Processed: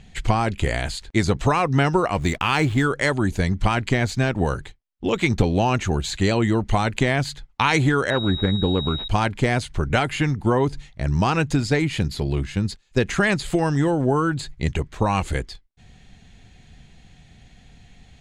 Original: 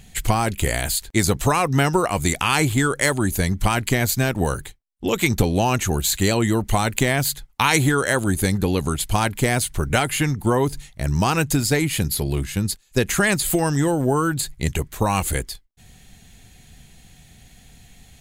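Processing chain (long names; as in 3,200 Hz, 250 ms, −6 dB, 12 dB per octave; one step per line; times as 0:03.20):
high-frequency loss of the air 120 metres
0:02.15–0:02.85: slack as between gear wheels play −37.5 dBFS
0:08.10–0:09.08: switching amplifier with a slow clock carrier 3,800 Hz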